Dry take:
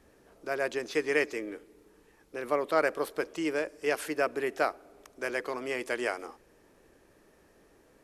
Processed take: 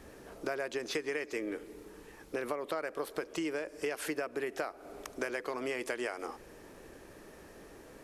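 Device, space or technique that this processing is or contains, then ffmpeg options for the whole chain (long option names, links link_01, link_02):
serial compression, leveller first: -af "acompressor=threshold=-30dB:ratio=2.5,acompressor=threshold=-42dB:ratio=6,volume=9dB"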